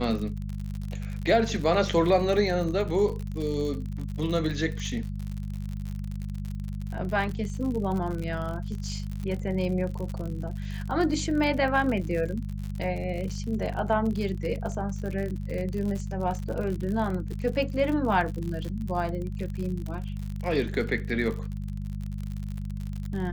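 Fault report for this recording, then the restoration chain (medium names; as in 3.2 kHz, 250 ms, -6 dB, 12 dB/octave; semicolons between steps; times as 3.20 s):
crackle 59 per s -32 dBFS
hum 50 Hz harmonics 4 -33 dBFS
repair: de-click; de-hum 50 Hz, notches 4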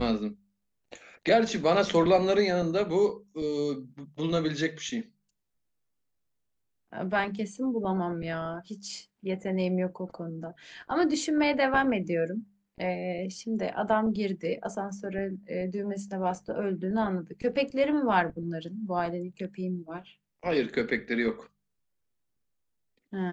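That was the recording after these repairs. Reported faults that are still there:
nothing left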